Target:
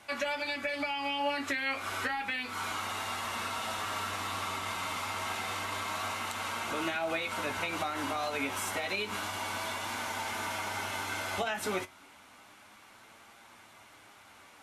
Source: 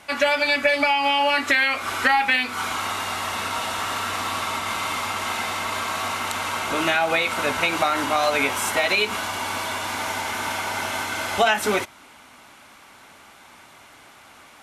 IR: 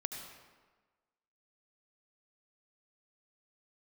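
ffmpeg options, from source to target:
-filter_complex "[0:a]acrossover=split=420[a][b];[b]acompressor=threshold=-23dB:ratio=2.5[c];[a][c]amix=inputs=2:normalize=0,asplit=2[d][e];[e]alimiter=limit=-19dB:level=0:latency=1:release=151,volume=-2dB[f];[d][f]amix=inputs=2:normalize=0,flanger=delay=8.6:depth=2.5:regen=54:speed=0.3:shape=triangular,volume=-8.5dB"

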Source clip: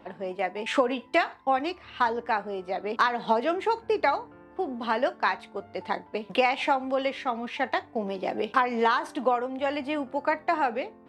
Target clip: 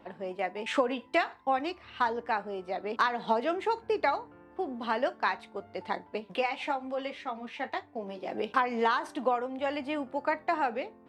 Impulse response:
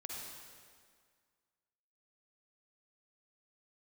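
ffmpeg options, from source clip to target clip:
-filter_complex "[0:a]asettb=1/sr,asplit=3[a][b][c];[a]atrim=end=6.204[d];[b]atrim=start=6.2:end=8.32,asetpts=PTS-STARTPTS,afade=t=in:d=0.004:c=qsin,afade=t=out:st=2.116:d=0.004:c=qsin,flanger=delay=9.9:depth=4.3:regen=-39:speed=1.8:shape=sinusoidal[e];[c]atrim=start=8.316[f];[d][e]acrossfade=d=0.004:c1=hsin:c2=qsin[g];[g][f]acrossfade=d=0.004:c1=qsin:c2=hsin,volume=-3.5dB"

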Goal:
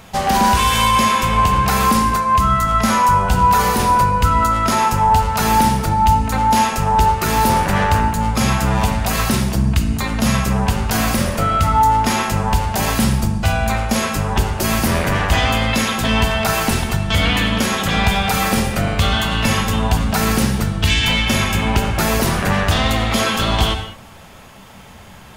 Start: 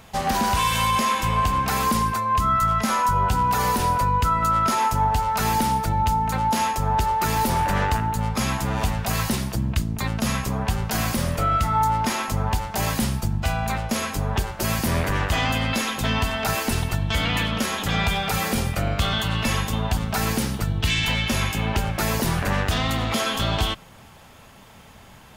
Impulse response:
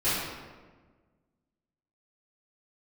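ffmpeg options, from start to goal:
-filter_complex "[0:a]asplit=2[a][b];[1:a]atrim=start_sample=2205,afade=t=out:st=0.16:d=0.01,atrim=end_sample=7497,asetrate=22932,aresample=44100[c];[b][c]afir=irnorm=-1:irlink=0,volume=-21dB[d];[a][d]amix=inputs=2:normalize=0,volume=5dB"

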